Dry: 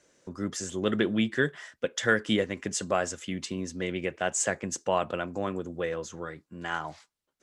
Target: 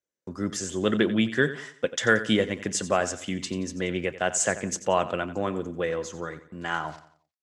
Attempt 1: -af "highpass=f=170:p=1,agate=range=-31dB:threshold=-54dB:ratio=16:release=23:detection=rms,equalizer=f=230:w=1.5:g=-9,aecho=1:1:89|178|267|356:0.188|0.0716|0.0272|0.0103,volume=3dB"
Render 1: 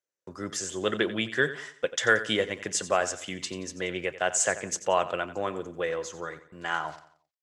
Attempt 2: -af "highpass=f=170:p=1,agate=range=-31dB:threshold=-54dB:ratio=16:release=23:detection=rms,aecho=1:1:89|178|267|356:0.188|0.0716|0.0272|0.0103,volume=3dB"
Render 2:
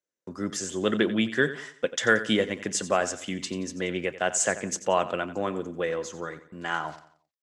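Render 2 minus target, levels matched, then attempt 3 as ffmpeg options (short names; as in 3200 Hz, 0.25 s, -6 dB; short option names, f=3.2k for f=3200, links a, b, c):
125 Hz band -3.0 dB
-af "agate=range=-31dB:threshold=-54dB:ratio=16:release=23:detection=rms,aecho=1:1:89|178|267|356:0.188|0.0716|0.0272|0.0103,volume=3dB"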